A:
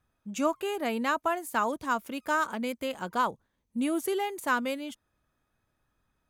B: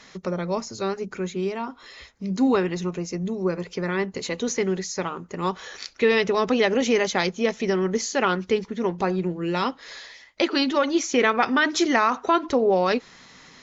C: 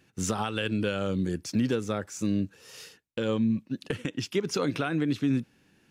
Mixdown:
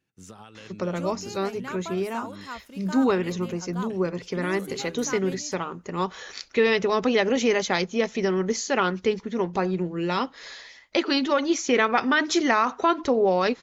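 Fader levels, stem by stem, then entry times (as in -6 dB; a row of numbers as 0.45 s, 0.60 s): -9.5 dB, -1.0 dB, -16.0 dB; 0.60 s, 0.55 s, 0.00 s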